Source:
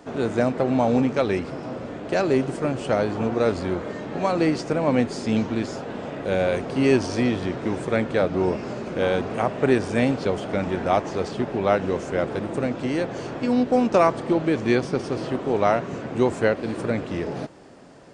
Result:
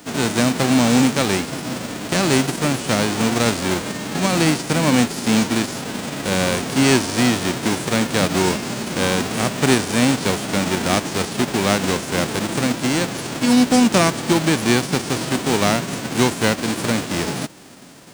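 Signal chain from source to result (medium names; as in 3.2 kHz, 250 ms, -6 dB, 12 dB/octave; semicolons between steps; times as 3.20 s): formants flattened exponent 0.3; peaking EQ 230 Hz +8.5 dB 2.1 oct; in parallel at -2 dB: peak limiter -11 dBFS, peak gain reduction 11 dB; on the sum: trim -3.5 dB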